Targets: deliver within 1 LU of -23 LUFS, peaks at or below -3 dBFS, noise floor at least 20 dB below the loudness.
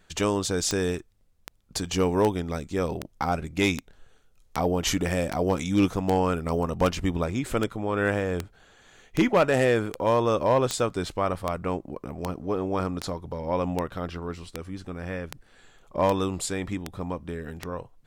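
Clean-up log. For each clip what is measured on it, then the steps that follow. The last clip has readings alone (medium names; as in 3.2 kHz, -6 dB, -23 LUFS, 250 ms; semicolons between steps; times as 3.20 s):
clicks found 23; loudness -27.0 LUFS; peak level -9.0 dBFS; loudness target -23.0 LUFS
-> de-click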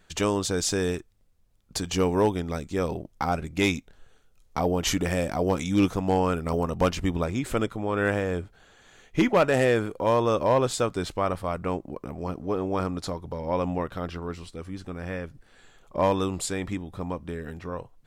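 clicks found 0; loudness -27.0 LUFS; peak level -13.0 dBFS; loudness target -23.0 LUFS
-> trim +4 dB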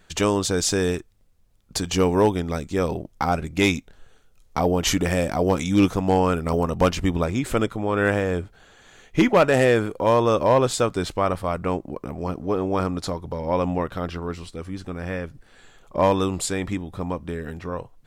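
loudness -23.0 LUFS; peak level -9.0 dBFS; noise floor -56 dBFS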